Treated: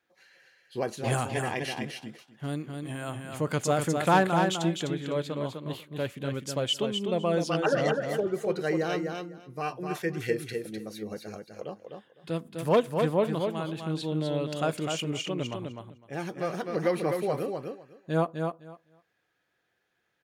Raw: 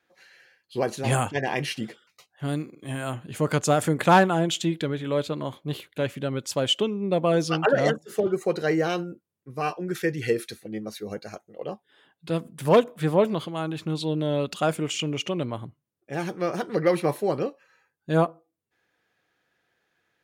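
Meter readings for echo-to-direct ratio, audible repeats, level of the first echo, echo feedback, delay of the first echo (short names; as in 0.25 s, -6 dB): -5.0 dB, 2, -5.0 dB, 16%, 0.253 s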